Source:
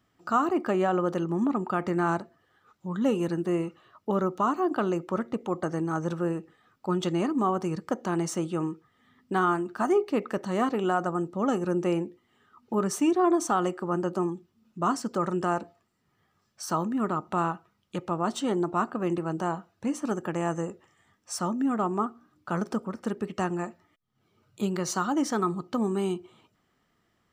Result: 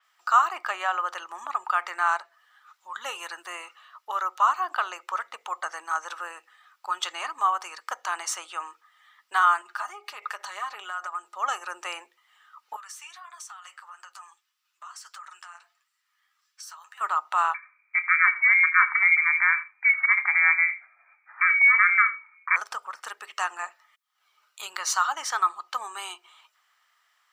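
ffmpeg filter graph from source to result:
ffmpeg -i in.wav -filter_complex "[0:a]asettb=1/sr,asplit=3[link_01][link_02][link_03];[link_01]atrim=end=9.614[link_04];[link_02]atrim=start=9.61:end=11.35,asetpts=PTS-STARTPTS,afade=type=in:duration=0.004:curve=qsin,afade=type=out:start_time=1.736:duration=0.004:curve=qsin,acompressor=threshold=-30dB:ratio=12:attack=3.2:release=140:knee=1:detection=peak,aecho=1:1:4.9:0.53,atrim=end_sample=76734[link_05];[link_03]atrim=start=11.346[link_06];[link_04][link_05]acrossfade=duration=0.004:curve1=hsin:curve2=qsin[link_07];[link_07][link_06]acrossfade=duration=0.004:curve1=qsin:curve2=hsin,asettb=1/sr,asplit=3[link_08][link_09][link_10];[link_08]atrim=end=12.764[link_11];[link_09]atrim=start=12.76:end=17.01,asetpts=PTS-STARTPTS,afade=type=in:duration=0.004:curve=qsin,afade=type=out:start_time=4.246:duration=0.004:curve=qsin,highpass=1400,acompressor=threshold=-42dB:ratio=10:attack=3.2:release=140:knee=1:detection=peak,flanger=delay=6:depth=5.9:regen=-38:speed=1.6:shape=triangular[link_12];[link_10]atrim=start=17.006[link_13];[link_11][link_12]acrossfade=duration=0.004:curve1=hsin:curve2=qsin[link_14];[link_14][link_13]acrossfade=duration=0.004:curve1=qsin:curve2=hsin,asettb=1/sr,asplit=3[link_15][link_16][link_17];[link_15]atrim=end=17.544[link_18];[link_16]atrim=start=17.54:end=22.56,asetpts=PTS-STARTPTS,afade=type=in:duration=0.004:curve=qsin,afade=type=out:start_time=5.016:duration=0.004:curve=qsin,asplit=2[link_19][link_20];[link_20]adelay=30,volume=-13.5dB[link_21];[link_19][link_21]amix=inputs=2:normalize=0,atrim=end_sample=221382,lowpass=frequency=2100:width_type=q:width=0.5098,lowpass=frequency=2100:width_type=q:width=0.6013,lowpass=frequency=2100:width_type=q:width=0.9,lowpass=frequency=2100:width_type=q:width=2.563,afreqshift=-2500,aecho=1:1:82:0.141,atrim=end_sample=221382[link_22];[link_17]atrim=start=22.556[link_23];[link_18][link_22]acrossfade=duration=0.004:curve1=hsin:curve2=qsin[link_24];[link_24][link_23]acrossfade=duration=0.004:curve1=qsin:curve2=hsin,highpass=frequency=990:width=0.5412,highpass=frequency=990:width=1.3066,adynamicequalizer=threshold=0.00282:dfrequency=5200:dqfactor=0.7:tfrequency=5200:tqfactor=0.7:attack=5:release=100:ratio=0.375:range=3:mode=cutabove:tftype=highshelf,volume=8dB" out.wav

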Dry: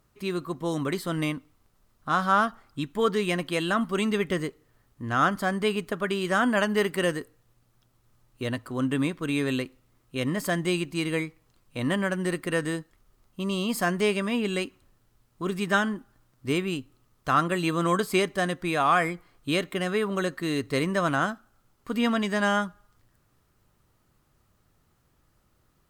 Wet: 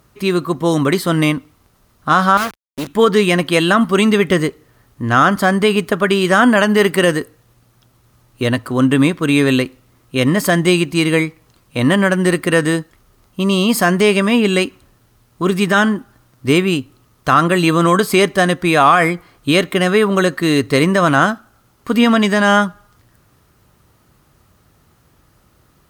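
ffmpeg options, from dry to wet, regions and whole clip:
ffmpeg -i in.wav -filter_complex "[0:a]asettb=1/sr,asplit=3[link_01][link_02][link_03];[link_01]atrim=end=2.374[link_04];[link_02]atrim=start=2.37:end=2.87,asetpts=PTS-STARTPTS,afade=type=in:duration=0.004:curve=qsin,afade=type=out:start_time=0.496:duration=0.004:curve=qsin,acrusher=bits=4:dc=4:mix=0:aa=0.000001,agate=range=-29dB:threshold=-48dB:ratio=16:release=100:detection=peak,asoftclip=type=hard:threshold=-26dB[link_05];[link_03]atrim=start=2.866[link_06];[link_04][link_05]acrossfade=duration=0.004:curve1=hsin:curve2=qsin[link_07];[link_07][link_06]acrossfade=duration=0.004:curve1=qsin:curve2=hsin,highpass=40,bandreject=frequency=7600:width=21,alimiter=level_in=14.5dB:limit=-1dB:release=50:level=0:latency=1,volume=-1dB" out.wav

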